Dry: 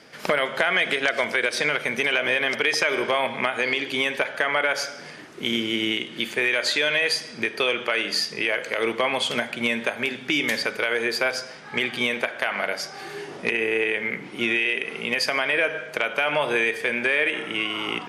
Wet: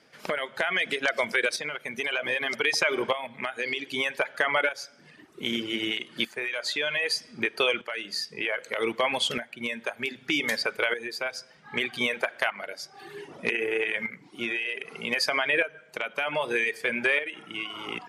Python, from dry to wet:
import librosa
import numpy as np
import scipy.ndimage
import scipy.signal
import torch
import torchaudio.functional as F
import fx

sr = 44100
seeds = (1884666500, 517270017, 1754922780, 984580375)

y = fx.dereverb_blind(x, sr, rt60_s=1.3)
y = fx.tremolo_shape(y, sr, shape='saw_up', hz=0.64, depth_pct=70)